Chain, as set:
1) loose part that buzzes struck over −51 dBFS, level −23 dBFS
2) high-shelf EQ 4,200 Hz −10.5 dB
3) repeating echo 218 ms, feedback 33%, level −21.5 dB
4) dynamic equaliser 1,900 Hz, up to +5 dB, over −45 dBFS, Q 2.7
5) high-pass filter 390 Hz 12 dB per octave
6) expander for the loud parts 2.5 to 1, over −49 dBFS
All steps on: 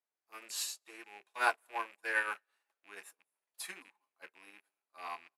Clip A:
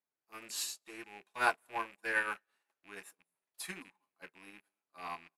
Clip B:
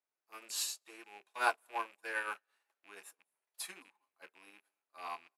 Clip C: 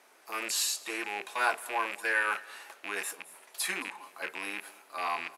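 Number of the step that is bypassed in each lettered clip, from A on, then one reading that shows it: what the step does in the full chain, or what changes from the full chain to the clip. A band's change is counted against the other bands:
5, 250 Hz band +6.0 dB
4, change in integrated loudness −1.5 LU
6, 250 Hz band +5.0 dB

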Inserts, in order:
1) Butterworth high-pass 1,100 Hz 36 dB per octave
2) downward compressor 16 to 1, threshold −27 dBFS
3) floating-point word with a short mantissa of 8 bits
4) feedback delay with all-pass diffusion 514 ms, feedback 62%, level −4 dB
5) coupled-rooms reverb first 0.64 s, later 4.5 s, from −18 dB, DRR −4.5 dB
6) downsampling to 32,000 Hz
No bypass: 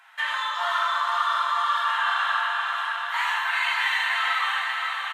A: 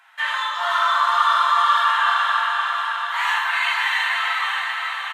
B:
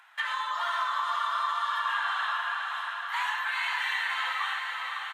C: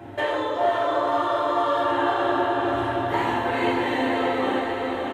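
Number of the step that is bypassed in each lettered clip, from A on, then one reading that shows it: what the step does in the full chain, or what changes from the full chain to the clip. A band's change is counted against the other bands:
2, average gain reduction 3.0 dB
5, change in crest factor −2.0 dB
1, 500 Hz band +26.5 dB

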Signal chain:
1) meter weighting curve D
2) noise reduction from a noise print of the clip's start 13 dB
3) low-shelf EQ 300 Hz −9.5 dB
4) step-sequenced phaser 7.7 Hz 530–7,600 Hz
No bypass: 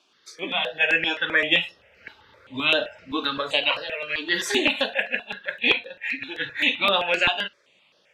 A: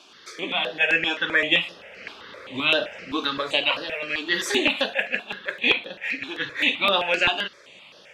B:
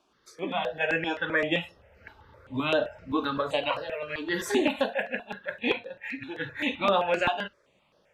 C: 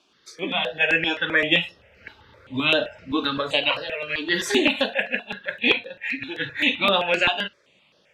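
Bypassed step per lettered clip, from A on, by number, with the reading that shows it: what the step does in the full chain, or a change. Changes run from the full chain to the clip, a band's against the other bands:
2, change in momentary loudness spread +4 LU
1, 4 kHz band −11.5 dB
3, 125 Hz band +6.0 dB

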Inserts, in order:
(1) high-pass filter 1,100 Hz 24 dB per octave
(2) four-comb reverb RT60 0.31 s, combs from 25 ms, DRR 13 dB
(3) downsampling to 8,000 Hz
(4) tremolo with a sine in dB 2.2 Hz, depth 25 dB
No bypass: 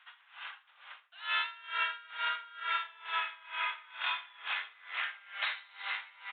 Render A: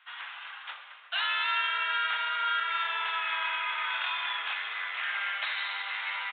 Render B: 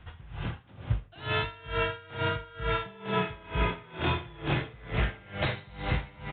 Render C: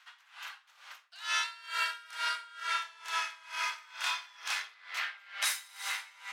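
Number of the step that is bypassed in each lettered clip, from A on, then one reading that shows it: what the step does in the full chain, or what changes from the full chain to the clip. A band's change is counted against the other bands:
4, change in crest factor −5.0 dB
1, change in crest factor −1.5 dB
3, 4 kHz band +2.5 dB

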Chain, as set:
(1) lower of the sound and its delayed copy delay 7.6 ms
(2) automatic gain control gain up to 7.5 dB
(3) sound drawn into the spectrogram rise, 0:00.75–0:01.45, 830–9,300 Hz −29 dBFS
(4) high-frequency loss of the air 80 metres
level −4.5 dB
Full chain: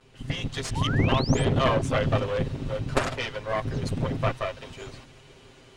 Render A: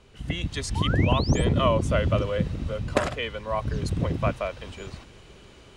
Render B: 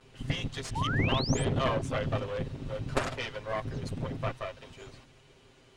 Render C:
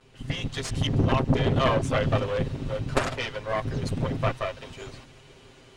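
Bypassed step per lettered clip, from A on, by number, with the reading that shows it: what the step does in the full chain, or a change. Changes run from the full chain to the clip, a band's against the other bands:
1, 2 kHz band −1.5 dB
2, change in momentary loudness spread +2 LU
3, 8 kHz band −1.5 dB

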